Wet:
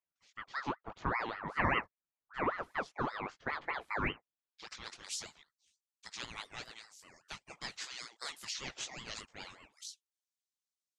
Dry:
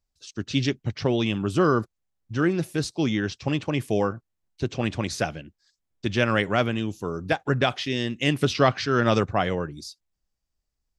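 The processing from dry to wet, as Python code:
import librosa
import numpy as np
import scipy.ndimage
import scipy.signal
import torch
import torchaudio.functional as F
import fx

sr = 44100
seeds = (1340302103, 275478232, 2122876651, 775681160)

y = fx.chorus_voices(x, sr, voices=2, hz=0.49, base_ms=19, depth_ms=2.1, mix_pct=40)
y = fx.filter_sweep_bandpass(y, sr, from_hz=710.0, to_hz=6800.0, start_s=3.75, end_s=5.07, q=1.4)
y = fx.ring_lfo(y, sr, carrier_hz=1100.0, swing_pct=50, hz=5.1)
y = y * 10.0 ** (1.5 / 20.0)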